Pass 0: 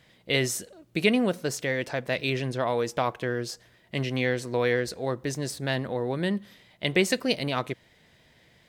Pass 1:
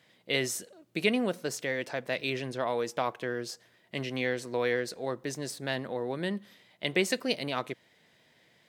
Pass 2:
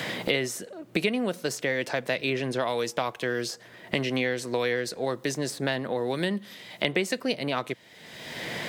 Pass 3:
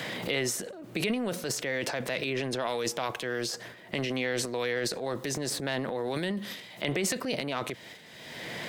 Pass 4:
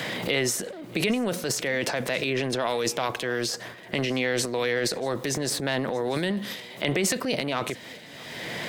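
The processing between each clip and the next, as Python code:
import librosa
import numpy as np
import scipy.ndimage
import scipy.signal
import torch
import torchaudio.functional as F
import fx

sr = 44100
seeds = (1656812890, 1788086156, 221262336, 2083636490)

y1 = scipy.signal.sosfilt(scipy.signal.bessel(2, 190.0, 'highpass', norm='mag', fs=sr, output='sos'), x)
y1 = F.gain(torch.from_numpy(y1), -3.5).numpy()
y2 = fx.band_squash(y1, sr, depth_pct=100)
y2 = F.gain(torch.from_numpy(y2), 3.0).numpy()
y3 = fx.transient(y2, sr, attack_db=-3, sustain_db=11)
y3 = F.gain(torch.from_numpy(y3), -4.0).numpy()
y4 = y3 + 10.0 ** (-22.0 / 20.0) * np.pad(y3, (int(635 * sr / 1000.0), 0))[:len(y3)]
y4 = F.gain(torch.from_numpy(y4), 4.5).numpy()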